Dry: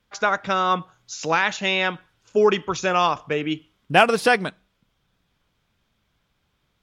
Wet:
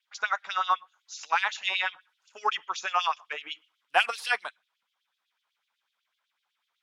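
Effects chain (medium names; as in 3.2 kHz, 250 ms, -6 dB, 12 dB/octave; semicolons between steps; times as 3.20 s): Chebyshev shaper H 7 -39 dB, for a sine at -4 dBFS; LFO high-pass sine 8 Hz 830–3700 Hz; trim -8.5 dB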